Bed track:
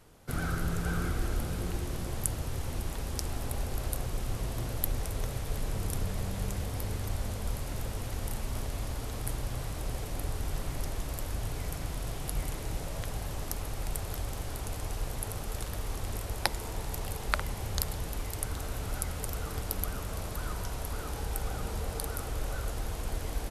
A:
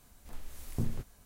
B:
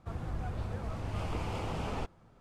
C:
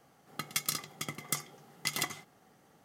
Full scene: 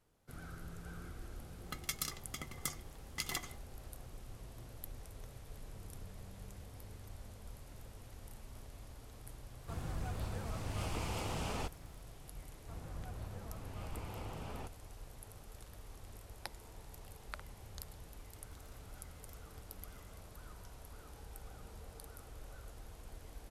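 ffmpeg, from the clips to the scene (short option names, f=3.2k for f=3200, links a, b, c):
-filter_complex "[3:a]asplit=2[a][b];[2:a]asplit=2[c][d];[0:a]volume=-17dB[e];[c]crystalizer=i=3:c=0[f];[b]acompressor=threshold=-45dB:ratio=3:attack=0.12:release=71:knee=1:detection=peak[g];[a]atrim=end=2.84,asetpts=PTS-STARTPTS,volume=-6.5dB,afade=t=in:d=0.004:c=hsin,afade=t=out:st=2.836:d=0.004:c=hsin,adelay=1330[h];[f]atrim=end=2.4,asetpts=PTS-STARTPTS,volume=-4dB,afade=t=in:d=0.004:c=hsin,afade=t=out:st=2.396:d=0.004:c=hsin,adelay=424242S[i];[d]atrim=end=2.4,asetpts=PTS-STARTPTS,volume=-10dB,afade=t=in:d=0.004:c=hsin,afade=t=out:st=2.396:d=0.004:c=hsin,adelay=12620[j];[g]atrim=end=2.84,asetpts=PTS-STARTPTS,volume=-18dB,afade=t=in:d=0.004:c=hsin,afade=t=out:st=2.836:d=0.004:c=hsin,adelay=17970[k];[e][h][i][j][k]amix=inputs=5:normalize=0"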